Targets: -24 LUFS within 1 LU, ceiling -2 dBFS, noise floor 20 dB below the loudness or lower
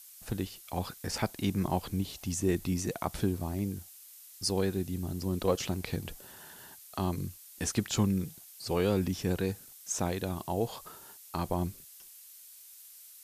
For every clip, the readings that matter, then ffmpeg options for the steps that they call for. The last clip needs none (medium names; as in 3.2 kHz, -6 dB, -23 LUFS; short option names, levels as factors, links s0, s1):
noise floor -53 dBFS; noise floor target -54 dBFS; loudness -33.5 LUFS; peak level -15.0 dBFS; loudness target -24.0 LUFS
-> -af "afftdn=nr=6:nf=-53"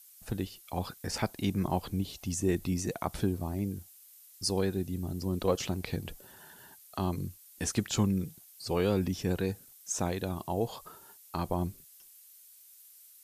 noise floor -56 dBFS; loudness -33.5 LUFS; peak level -15.0 dBFS; loudness target -24.0 LUFS
-> -af "volume=2.99"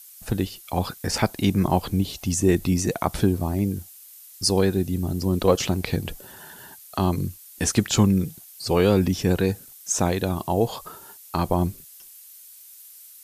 loudness -24.0 LUFS; peak level -5.5 dBFS; noise floor -47 dBFS